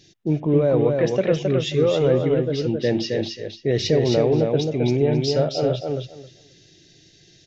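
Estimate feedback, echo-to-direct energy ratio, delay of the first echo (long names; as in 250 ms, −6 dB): 17%, −4.0 dB, 267 ms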